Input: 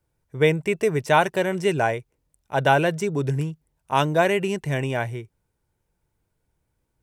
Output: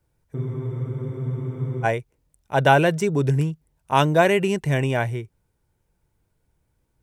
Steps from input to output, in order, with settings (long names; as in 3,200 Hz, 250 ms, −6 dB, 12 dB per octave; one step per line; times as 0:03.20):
low-shelf EQ 220 Hz +3 dB
frozen spectrum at 0:00.36, 1.49 s
level +2 dB